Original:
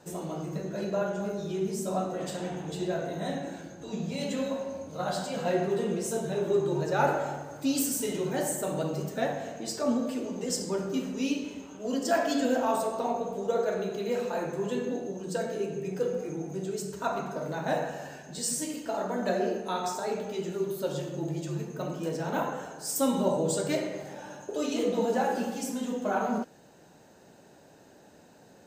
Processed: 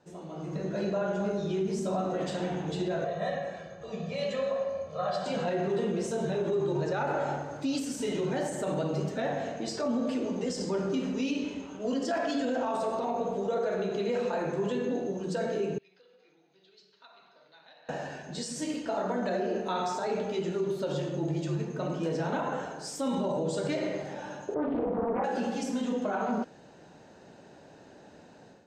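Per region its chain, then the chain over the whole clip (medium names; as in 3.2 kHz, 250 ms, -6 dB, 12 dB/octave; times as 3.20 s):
3.04–5.26 s: low-pass 2.3 kHz 6 dB/octave + bass shelf 490 Hz -8.5 dB + comb 1.7 ms, depth 98%
15.78–17.89 s: compression, threshold -29 dBFS + band-pass filter 4.2 kHz, Q 3.5 + distance through air 240 m
24.54–25.24 s: low-pass 1.5 kHz 24 dB/octave + flutter echo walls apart 9.3 m, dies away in 0.24 s + loudspeaker Doppler distortion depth 0.54 ms
whole clip: peak limiter -25 dBFS; low-pass 5.1 kHz 12 dB/octave; level rider gain up to 11.5 dB; trim -8.5 dB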